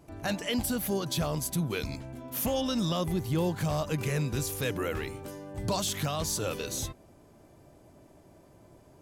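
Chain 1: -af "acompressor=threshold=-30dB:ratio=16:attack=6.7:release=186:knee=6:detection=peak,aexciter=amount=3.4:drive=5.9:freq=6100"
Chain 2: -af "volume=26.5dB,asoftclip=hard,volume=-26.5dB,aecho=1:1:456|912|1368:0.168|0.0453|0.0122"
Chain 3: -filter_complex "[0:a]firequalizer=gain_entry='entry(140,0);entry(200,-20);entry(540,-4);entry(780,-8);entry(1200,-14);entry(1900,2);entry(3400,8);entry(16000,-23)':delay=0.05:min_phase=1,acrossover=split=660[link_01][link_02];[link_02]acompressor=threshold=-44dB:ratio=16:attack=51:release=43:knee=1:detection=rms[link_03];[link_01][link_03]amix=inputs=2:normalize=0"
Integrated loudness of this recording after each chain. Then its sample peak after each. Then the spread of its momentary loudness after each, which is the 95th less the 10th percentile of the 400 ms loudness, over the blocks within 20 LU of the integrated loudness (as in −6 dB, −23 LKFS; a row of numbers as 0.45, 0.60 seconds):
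−29.5, −32.0, −37.0 LKFS; −11.0, −24.5, −20.5 dBFS; 12, 9, 8 LU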